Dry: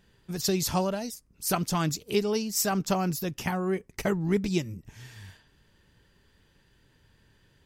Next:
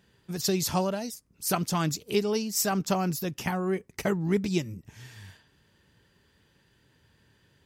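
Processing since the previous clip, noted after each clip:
high-pass filter 71 Hz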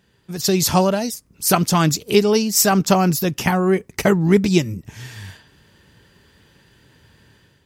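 automatic gain control gain up to 8.5 dB
level +3 dB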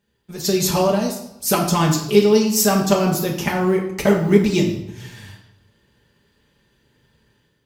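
mu-law and A-law mismatch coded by A
convolution reverb RT60 0.85 s, pre-delay 5 ms, DRR −2 dB
level −5 dB

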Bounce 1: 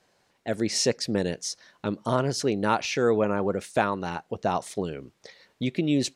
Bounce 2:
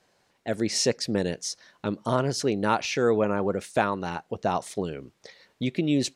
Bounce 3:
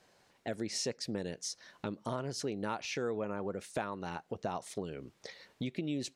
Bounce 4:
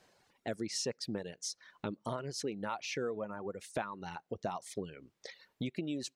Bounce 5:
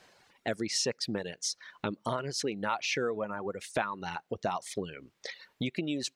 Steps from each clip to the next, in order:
no processing that can be heard
downward compressor 2.5 to 1, threshold −39 dBFS, peak gain reduction 14.5 dB
reverb reduction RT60 1.6 s
parametric band 2,300 Hz +5.5 dB 2.9 octaves; level +3.5 dB

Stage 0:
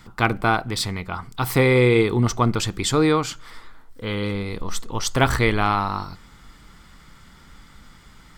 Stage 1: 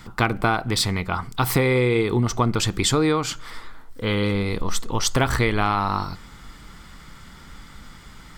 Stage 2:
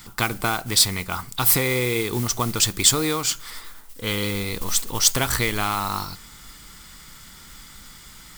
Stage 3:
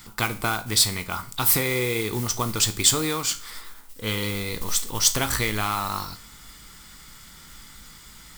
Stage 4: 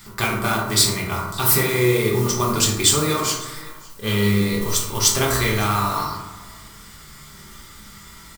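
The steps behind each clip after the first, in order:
downward compressor 5 to 1, threshold −21 dBFS, peak gain reduction 9 dB; level +4.5 dB
high-shelf EQ 2,600 Hz +10.5 dB; noise that follows the level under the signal 16 dB; high-shelf EQ 7,100 Hz +8 dB; level −5 dB
tuned comb filter 54 Hz, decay 0.36 s, harmonics all, mix 60%; level +2.5 dB
flanger 1.9 Hz, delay 7.5 ms, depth 9.3 ms, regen −82%; single-tap delay 559 ms −23.5 dB; convolution reverb RT60 1.0 s, pre-delay 3 ms, DRR −3.5 dB; level +4.5 dB

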